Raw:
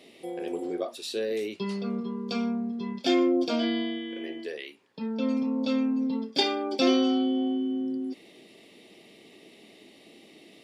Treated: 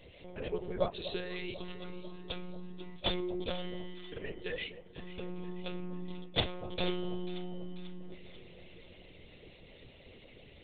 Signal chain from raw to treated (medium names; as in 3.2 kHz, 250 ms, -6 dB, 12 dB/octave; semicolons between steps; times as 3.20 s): harmonic-percussive split harmonic -18 dB; monotone LPC vocoder at 8 kHz 180 Hz; echo whose repeats swap between lows and highs 245 ms, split 920 Hz, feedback 73%, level -12 dB; trim +4 dB